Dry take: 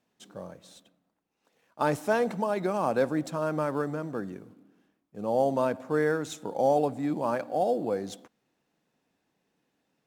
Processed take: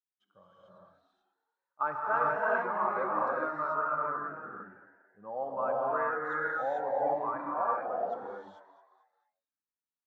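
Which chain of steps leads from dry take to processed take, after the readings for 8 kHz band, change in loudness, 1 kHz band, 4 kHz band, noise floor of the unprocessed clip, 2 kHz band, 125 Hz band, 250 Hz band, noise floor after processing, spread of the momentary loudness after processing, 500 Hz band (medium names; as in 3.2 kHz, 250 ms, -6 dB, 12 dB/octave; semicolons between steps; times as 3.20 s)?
under -30 dB, -3.0 dB, +1.5 dB, under -15 dB, -78 dBFS, +2.5 dB, -16.5 dB, -14.0 dB, under -85 dBFS, 13 LU, -6.0 dB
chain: expander on every frequency bin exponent 1.5; resonant low-pass 1.3 kHz, resonance Q 4.1; bass shelf 410 Hz -11.5 dB; gated-style reverb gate 470 ms rising, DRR -5.5 dB; dynamic bell 200 Hz, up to -5 dB, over -42 dBFS, Q 0.72; on a send: frequency-shifting echo 222 ms, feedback 46%, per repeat +91 Hz, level -15.5 dB; on the sum: trim -6 dB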